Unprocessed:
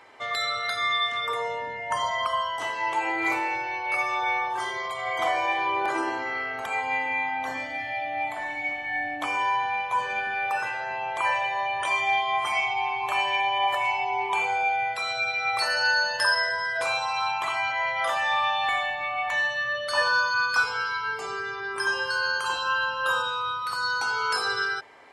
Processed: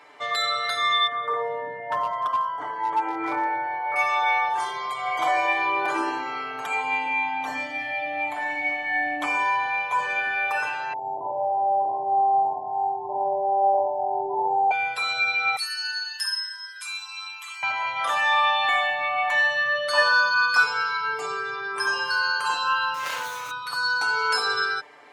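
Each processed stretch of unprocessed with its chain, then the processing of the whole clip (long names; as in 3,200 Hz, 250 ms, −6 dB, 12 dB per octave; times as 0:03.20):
0:01.07–0:03.96: Savitzky-Golay smoothing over 41 samples + hard clipping −21 dBFS
0:10.93–0:14.71: Butterworth low-pass 920 Hz 96 dB per octave + flutter between parallel walls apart 9.6 metres, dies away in 1.2 s
0:15.56–0:17.63: high-pass filter 1,100 Hz 24 dB per octave + first difference
0:22.94–0:23.51: running median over 15 samples + high-shelf EQ 5,000 Hz +8 dB + saturating transformer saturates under 2,700 Hz
whole clip: high-pass filter 160 Hz 12 dB per octave; comb filter 6.8 ms, depth 69%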